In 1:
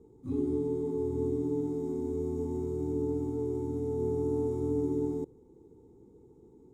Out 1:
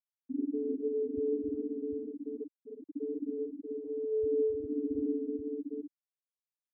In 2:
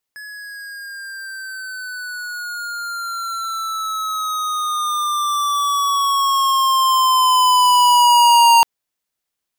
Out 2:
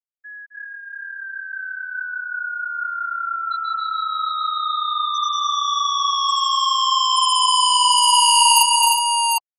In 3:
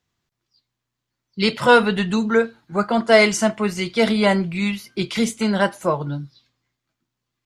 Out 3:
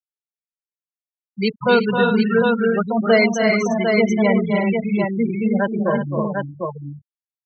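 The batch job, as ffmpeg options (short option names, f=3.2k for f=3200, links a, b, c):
-filter_complex "[0:a]aeval=exprs='val(0)+0.01*(sin(2*PI*50*n/s)+sin(2*PI*2*50*n/s)/2+sin(2*PI*3*50*n/s)/3+sin(2*PI*4*50*n/s)/4+sin(2*PI*5*50*n/s)/5)':c=same,afftfilt=real='re*gte(hypot(re,im),0.251)':imag='im*gte(hypot(re,im),0.251)':win_size=1024:overlap=0.75,aecho=1:1:263|307|364|750:0.398|0.596|0.299|0.562,acrossover=split=160|640|1600[a][b][c][d];[c]acompressor=threshold=-26dB:ratio=6[e];[a][b][e][d]amix=inputs=4:normalize=0,aexciter=amount=7.7:drive=7.1:freq=10k"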